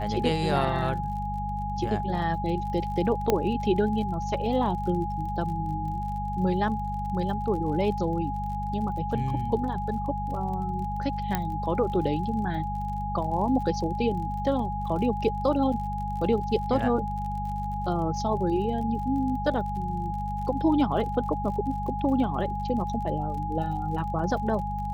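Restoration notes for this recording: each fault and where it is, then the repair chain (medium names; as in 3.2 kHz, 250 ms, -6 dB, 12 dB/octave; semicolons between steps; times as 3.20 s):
crackle 42 per s -37 dBFS
hum 50 Hz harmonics 4 -33 dBFS
whine 830 Hz -31 dBFS
3.30 s: pop -9 dBFS
11.35 s: pop -11 dBFS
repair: de-click; de-hum 50 Hz, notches 4; band-stop 830 Hz, Q 30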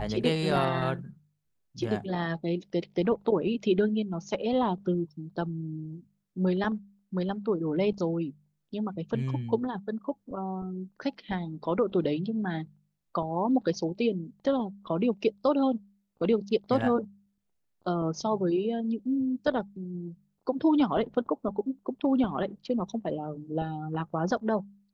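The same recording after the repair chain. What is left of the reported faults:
nothing left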